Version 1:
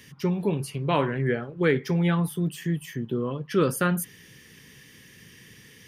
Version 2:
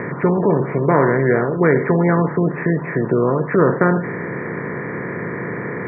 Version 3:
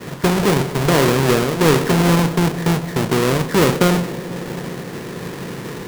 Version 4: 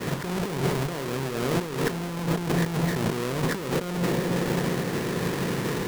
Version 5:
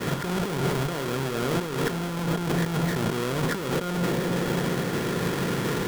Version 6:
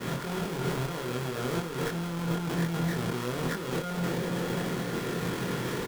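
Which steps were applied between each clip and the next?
compressor on every frequency bin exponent 0.4; Chebyshev low-pass filter 2,100 Hz, order 4; gate on every frequency bin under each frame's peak −25 dB strong; level +5 dB
each half-wave held at its own peak; downward expander −17 dBFS; bucket-brigade delay 164 ms, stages 1,024, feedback 82%, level −17 dB; level −4 dB
compressor whose output falls as the input rises −23 dBFS, ratio −1; level −4 dB
in parallel at −1 dB: brickwall limiter −23.5 dBFS, peak gain reduction 9.5 dB; on the sum: hollow resonant body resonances 1,400/3,300 Hz, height 9 dB; level −4 dB
double-tracking delay 24 ms −2 dB; level −7 dB

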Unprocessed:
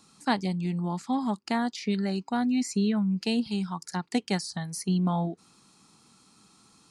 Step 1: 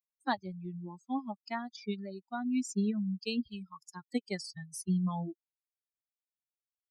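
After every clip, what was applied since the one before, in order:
spectral dynamics exaggerated over time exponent 3
level −1.5 dB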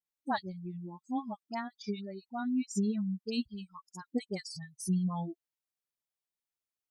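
dynamic equaliser 2,500 Hz, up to −5 dB, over −56 dBFS, Q 2
all-pass dispersion highs, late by 63 ms, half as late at 1,200 Hz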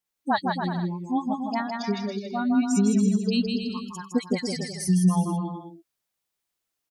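bouncing-ball delay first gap 160 ms, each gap 0.75×, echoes 5
level +8.5 dB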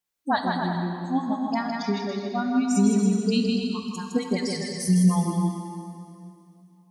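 dense smooth reverb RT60 2.7 s, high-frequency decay 0.9×, DRR 5 dB

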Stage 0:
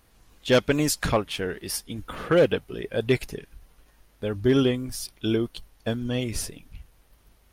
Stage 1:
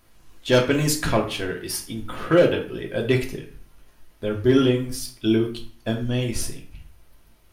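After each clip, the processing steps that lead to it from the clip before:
convolution reverb RT60 0.45 s, pre-delay 3 ms, DRR 1 dB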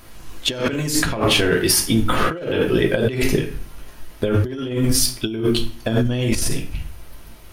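compressor whose output falls as the input rises −29 dBFS, ratio −1
level +9 dB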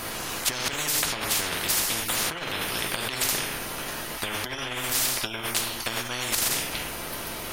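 every bin compressed towards the loudest bin 10 to 1
level −1.5 dB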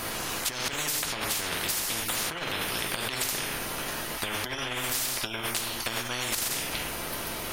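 downward compressor, threshold −26 dBFS, peak gain reduction 7 dB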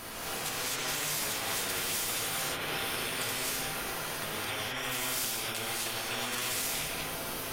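reverb whose tail is shaped and stops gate 290 ms rising, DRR −5.5 dB
level −9 dB

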